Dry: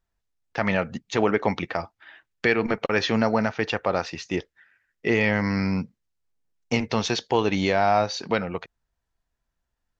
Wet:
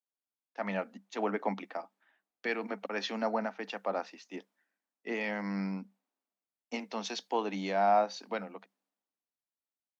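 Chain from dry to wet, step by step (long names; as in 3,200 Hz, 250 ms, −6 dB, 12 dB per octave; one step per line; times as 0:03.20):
background noise pink −65 dBFS
Chebyshev high-pass with heavy ripple 190 Hz, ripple 6 dB
multiband upward and downward expander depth 70%
level −8 dB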